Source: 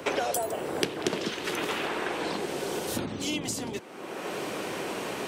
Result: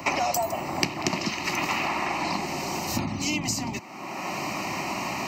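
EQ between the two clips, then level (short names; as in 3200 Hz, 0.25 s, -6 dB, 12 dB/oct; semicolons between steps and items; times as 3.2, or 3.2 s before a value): fixed phaser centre 2300 Hz, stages 8; +8.0 dB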